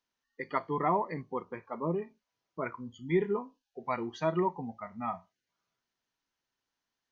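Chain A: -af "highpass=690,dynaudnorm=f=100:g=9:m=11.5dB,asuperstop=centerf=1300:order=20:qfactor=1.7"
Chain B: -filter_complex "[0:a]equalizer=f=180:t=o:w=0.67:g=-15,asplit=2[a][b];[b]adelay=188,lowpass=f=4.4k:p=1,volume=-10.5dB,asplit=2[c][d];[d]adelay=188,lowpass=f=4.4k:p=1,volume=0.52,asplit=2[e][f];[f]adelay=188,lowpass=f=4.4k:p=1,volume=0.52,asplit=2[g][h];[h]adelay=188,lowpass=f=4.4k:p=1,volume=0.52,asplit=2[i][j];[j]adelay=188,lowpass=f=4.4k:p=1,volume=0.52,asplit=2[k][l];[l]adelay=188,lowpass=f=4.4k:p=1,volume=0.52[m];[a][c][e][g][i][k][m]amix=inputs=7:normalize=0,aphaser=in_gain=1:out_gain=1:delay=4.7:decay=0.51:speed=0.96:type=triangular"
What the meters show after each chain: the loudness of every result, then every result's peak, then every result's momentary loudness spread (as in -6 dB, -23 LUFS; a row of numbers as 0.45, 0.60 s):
-29.5, -34.5 LUFS; -11.0, -14.0 dBFS; 16, 15 LU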